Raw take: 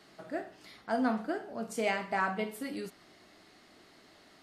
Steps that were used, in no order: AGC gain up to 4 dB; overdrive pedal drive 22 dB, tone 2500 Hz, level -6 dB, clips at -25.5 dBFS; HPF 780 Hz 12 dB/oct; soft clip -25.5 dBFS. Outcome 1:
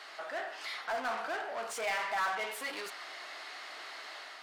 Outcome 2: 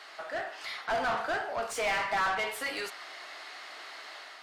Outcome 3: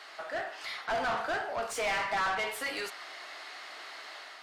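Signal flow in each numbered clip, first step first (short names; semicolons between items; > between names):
AGC > overdrive pedal > HPF > soft clip; HPF > overdrive pedal > soft clip > AGC; HPF > overdrive pedal > AGC > soft clip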